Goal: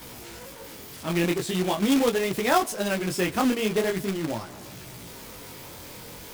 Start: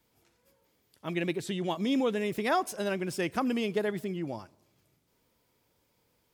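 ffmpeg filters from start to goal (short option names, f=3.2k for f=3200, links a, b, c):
-af "aeval=exprs='val(0)+0.5*0.0075*sgn(val(0))':c=same,flanger=delay=16:depth=7.6:speed=0.42,acrusher=bits=2:mode=log:mix=0:aa=0.000001,volume=7.5dB"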